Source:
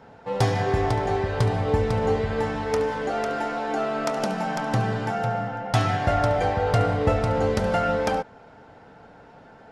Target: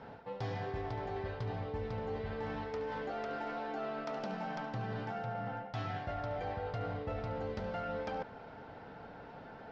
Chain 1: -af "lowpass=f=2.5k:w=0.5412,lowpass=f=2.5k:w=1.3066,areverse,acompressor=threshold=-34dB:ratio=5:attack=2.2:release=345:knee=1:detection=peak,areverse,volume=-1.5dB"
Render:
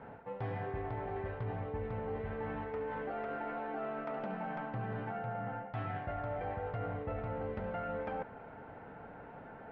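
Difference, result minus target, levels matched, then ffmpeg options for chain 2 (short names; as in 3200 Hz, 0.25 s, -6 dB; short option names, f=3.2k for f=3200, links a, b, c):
4000 Hz band -9.5 dB
-af "lowpass=f=5k:w=0.5412,lowpass=f=5k:w=1.3066,areverse,acompressor=threshold=-34dB:ratio=5:attack=2.2:release=345:knee=1:detection=peak,areverse,volume=-1.5dB"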